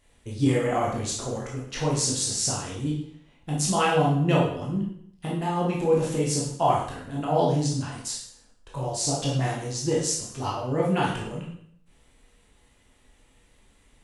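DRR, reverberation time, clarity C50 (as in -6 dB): -4.5 dB, 0.65 s, 3.0 dB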